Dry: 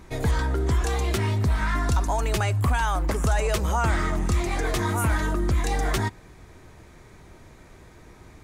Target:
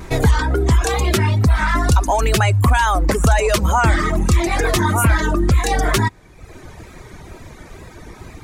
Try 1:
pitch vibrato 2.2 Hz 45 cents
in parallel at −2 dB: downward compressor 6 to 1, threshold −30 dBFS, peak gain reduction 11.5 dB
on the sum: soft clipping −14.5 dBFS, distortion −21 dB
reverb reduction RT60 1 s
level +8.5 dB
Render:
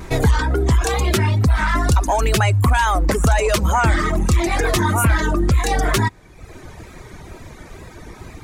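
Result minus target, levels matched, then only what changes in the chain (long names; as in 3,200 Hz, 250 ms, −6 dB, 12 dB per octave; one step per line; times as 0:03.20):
soft clipping: distortion +11 dB
change: soft clipping −8 dBFS, distortion −32 dB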